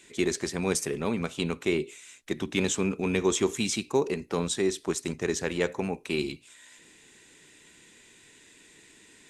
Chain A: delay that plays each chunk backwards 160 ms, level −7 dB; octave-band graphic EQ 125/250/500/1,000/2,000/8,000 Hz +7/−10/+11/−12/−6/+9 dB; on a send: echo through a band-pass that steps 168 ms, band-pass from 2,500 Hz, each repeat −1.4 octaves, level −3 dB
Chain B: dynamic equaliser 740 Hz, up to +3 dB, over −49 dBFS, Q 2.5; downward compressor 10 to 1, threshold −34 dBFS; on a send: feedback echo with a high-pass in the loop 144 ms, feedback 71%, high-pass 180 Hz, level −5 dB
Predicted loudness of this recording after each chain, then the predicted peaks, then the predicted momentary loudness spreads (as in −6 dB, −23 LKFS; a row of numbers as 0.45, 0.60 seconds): −25.5, −38.0 LKFS; −6.0, −20.0 dBFS; 11, 14 LU